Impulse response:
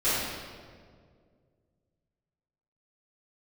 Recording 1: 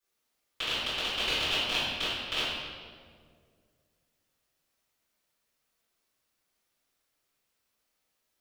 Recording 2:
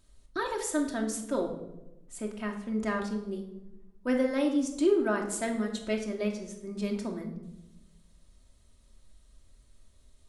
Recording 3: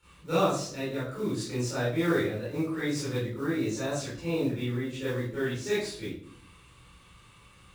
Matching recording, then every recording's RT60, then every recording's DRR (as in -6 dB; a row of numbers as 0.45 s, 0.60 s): 1; 2.0 s, 0.95 s, 0.55 s; -15.5 dB, 1.0 dB, -13.0 dB